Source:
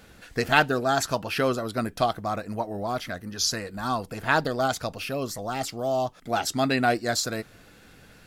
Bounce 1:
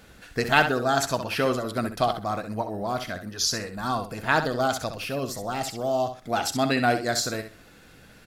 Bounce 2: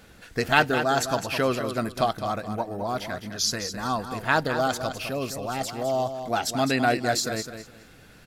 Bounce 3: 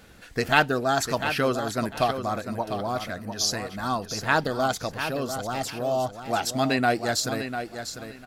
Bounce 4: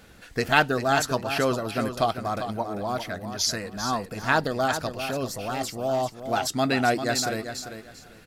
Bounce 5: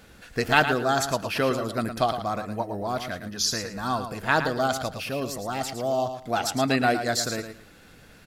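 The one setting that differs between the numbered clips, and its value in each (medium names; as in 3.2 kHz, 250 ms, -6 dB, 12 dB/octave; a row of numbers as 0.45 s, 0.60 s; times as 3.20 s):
feedback delay, time: 65 ms, 209 ms, 698 ms, 395 ms, 111 ms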